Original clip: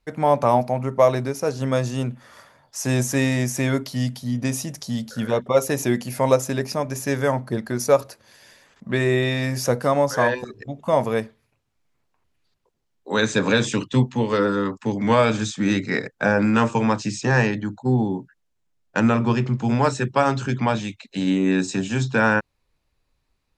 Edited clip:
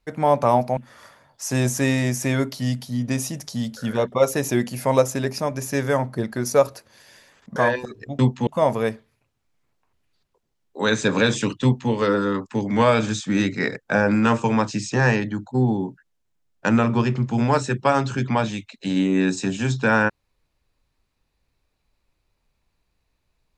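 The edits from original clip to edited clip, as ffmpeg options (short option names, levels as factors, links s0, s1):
-filter_complex "[0:a]asplit=5[s0][s1][s2][s3][s4];[s0]atrim=end=0.772[s5];[s1]atrim=start=2.108:end=8.902[s6];[s2]atrim=start=10.148:end=10.782[s7];[s3]atrim=start=13.938:end=14.222[s8];[s4]atrim=start=10.778[s9];[s5][s6]acrossfade=d=0.004:c1=hsin:c2=hsin[s10];[s10][s7]acrossfade=d=0.004:c1=hsin:c2=hsin[s11];[s11][s8]acrossfade=d=0.004:c1=hsin:c2=hsin[s12];[s12][s9]acrossfade=d=0.004:c1=hsin:c2=hsin"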